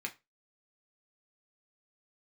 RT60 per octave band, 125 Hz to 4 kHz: 0.25, 0.25, 0.25, 0.25, 0.20, 0.20 seconds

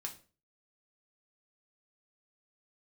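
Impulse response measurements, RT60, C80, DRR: 0.35 s, 18.5 dB, 0.5 dB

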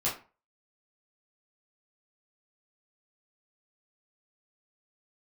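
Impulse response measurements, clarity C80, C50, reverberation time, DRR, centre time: 14.0 dB, 7.5 dB, 0.35 s, −8.0 dB, 29 ms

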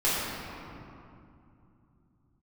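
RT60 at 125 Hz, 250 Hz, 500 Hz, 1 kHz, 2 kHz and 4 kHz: can't be measured, 3.8 s, 2.7 s, 2.6 s, 2.0 s, 1.4 s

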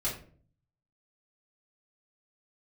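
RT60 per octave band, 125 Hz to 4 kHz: 0.90, 0.70, 0.55, 0.40, 0.35, 0.30 seconds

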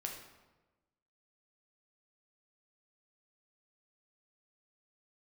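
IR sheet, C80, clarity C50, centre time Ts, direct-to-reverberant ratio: 7.5 dB, 5.0 dB, 36 ms, 0.5 dB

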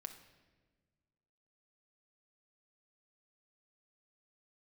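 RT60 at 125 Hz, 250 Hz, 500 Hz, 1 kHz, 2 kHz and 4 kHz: 2.1, 1.9, 1.6, 1.2, 1.2, 1.0 seconds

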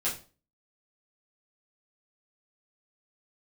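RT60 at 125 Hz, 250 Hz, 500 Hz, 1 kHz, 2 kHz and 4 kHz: 0.45, 0.45, 0.40, 0.35, 0.30, 0.30 seconds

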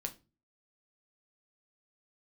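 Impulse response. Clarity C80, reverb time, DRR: 23.5 dB, 0.30 s, 4.5 dB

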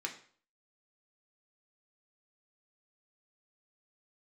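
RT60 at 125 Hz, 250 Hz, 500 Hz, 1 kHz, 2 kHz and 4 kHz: 0.50, 0.45, 0.50, 0.50, 0.45, 0.45 seconds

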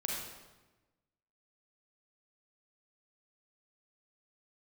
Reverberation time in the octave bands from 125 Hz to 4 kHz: 1.5, 1.3, 1.2, 1.1, 1.0, 0.90 seconds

